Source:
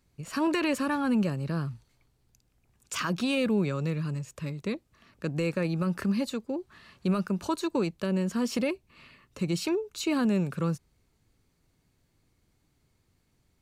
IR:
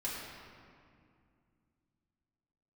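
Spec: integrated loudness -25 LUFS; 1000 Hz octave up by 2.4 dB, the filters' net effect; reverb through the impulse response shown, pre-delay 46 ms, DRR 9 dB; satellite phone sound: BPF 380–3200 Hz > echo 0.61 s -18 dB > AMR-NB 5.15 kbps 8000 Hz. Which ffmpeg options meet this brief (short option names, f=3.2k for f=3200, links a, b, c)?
-filter_complex "[0:a]equalizer=f=1k:t=o:g=3,asplit=2[a][b];[1:a]atrim=start_sample=2205,adelay=46[c];[b][c]afir=irnorm=-1:irlink=0,volume=-12dB[d];[a][d]amix=inputs=2:normalize=0,highpass=380,lowpass=3.2k,aecho=1:1:610:0.126,volume=10dB" -ar 8000 -c:a libopencore_amrnb -b:a 5150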